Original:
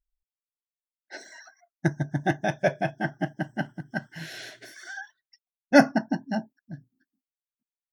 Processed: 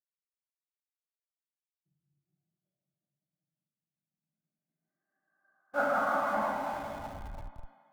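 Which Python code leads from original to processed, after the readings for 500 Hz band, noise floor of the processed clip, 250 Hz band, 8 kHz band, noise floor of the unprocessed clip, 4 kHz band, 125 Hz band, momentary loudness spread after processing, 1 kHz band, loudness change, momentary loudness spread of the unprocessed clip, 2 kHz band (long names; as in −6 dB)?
−8.5 dB, below −85 dBFS, −18.5 dB, below −10 dB, below −85 dBFS, −15.5 dB, −20.0 dB, 18 LU, −2.5 dB, −5.0 dB, 24 LU, −9.0 dB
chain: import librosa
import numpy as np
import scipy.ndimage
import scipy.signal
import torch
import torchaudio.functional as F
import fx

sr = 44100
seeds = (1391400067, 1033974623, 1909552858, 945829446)

p1 = fx.bit_reversed(x, sr, seeds[0], block=16)
p2 = p1 + fx.echo_thinned(p1, sr, ms=477, feedback_pct=54, hz=930.0, wet_db=-13, dry=0)
p3 = fx.level_steps(p2, sr, step_db=10)
p4 = fx.rev_plate(p3, sr, seeds[1], rt60_s=4.2, hf_ratio=0.85, predelay_ms=0, drr_db=-8.5)
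p5 = fx.filter_sweep_lowpass(p4, sr, from_hz=120.0, to_hz=3100.0, start_s=4.07, end_s=6.92, q=1.1)
p6 = fx.low_shelf(p5, sr, hz=83.0, db=-9.5)
p7 = fx.filter_sweep_bandpass(p6, sr, from_hz=3400.0, to_hz=1000.0, start_s=3.68, end_s=6.56, q=7.0)
p8 = fx.schmitt(p7, sr, flips_db=-48.0)
p9 = p7 + (p8 * librosa.db_to_amplitude(-5.0))
p10 = fx.low_shelf(p9, sr, hz=190.0, db=4.0)
p11 = fx.band_widen(p10, sr, depth_pct=70)
y = p11 * librosa.db_to_amplitude(5.0)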